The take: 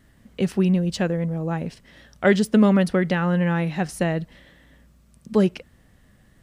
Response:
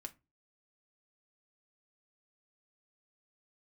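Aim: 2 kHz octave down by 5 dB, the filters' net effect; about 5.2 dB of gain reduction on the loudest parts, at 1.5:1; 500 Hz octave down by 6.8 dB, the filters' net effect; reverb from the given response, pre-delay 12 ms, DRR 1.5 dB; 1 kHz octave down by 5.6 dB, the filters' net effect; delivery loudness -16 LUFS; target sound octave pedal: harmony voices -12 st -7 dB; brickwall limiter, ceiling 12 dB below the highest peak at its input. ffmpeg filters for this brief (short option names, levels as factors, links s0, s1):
-filter_complex "[0:a]equalizer=f=500:t=o:g=-8,equalizer=f=1000:t=o:g=-3.5,equalizer=f=2000:t=o:g=-4.5,acompressor=threshold=0.0398:ratio=1.5,alimiter=level_in=1.06:limit=0.0631:level=0:latency=1,volume=0.944,asplit=2[s0][s1];[1:a]atrim=start_sample=2205,adelay=12[s2];[s1][s2]afir=irnorm=-1:irlink=0,volume=1.41[s3];[s0][s3]amix=inputs=2:normalize=0,asplit=2[s4][s5];[s5]asetrate=22050,aresample=44100,atempo=2,volume=0.447[s6];[s4][s6]amix=inputs=2:normalize=0,volume=4.73"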